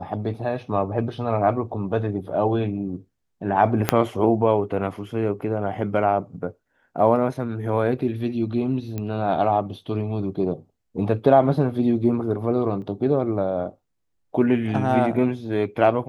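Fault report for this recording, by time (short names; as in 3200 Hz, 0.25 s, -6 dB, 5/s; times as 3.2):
3.89 pop -2 dBFS
8.98 pop -16 dBFS
12.82 gap 2.9 ms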